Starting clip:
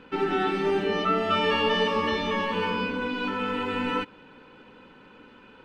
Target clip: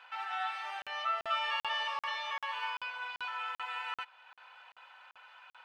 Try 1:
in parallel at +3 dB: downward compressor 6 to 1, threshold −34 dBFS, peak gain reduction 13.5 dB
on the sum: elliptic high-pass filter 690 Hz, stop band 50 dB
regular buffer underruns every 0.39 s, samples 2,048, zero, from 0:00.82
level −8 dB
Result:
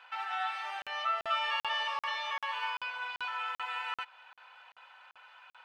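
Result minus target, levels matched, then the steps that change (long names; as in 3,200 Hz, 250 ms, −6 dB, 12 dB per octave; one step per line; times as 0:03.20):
downward compressor: peak gain reduction −7.5 dB
change: downward compressor 6 to 1, threshold −43 dBFS, peak gain reduction 21 dB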